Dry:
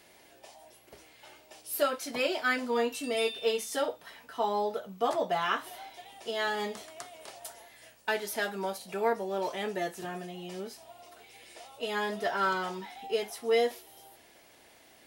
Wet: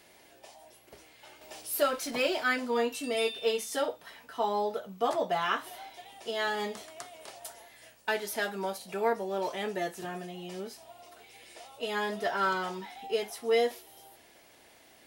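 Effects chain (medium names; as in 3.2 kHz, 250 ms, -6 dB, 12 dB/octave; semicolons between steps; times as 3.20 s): 1.41–2.44 s: companding laws mixed up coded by mu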